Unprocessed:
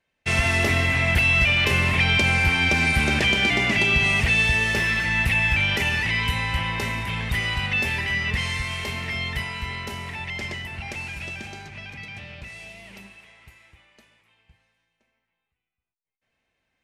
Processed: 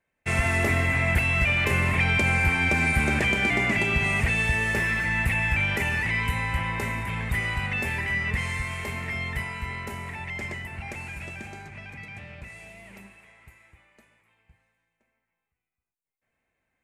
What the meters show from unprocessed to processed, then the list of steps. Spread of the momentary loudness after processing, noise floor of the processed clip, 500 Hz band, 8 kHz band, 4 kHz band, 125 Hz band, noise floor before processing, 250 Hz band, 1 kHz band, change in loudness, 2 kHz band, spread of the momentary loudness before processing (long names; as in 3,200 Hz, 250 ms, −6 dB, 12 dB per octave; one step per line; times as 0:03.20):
17 LU, −83 dBFS, −1.5 dB, −4.0 dB, −10.0 dB, −1.5 dB, −81 dBFS, −1.5 dB, −1.5 dB, −3.5 dB, −3.0 dB, 18 LU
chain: flat-topped bell 4,100 Hz −9 dB 1.3 octaves
level −1.5 dB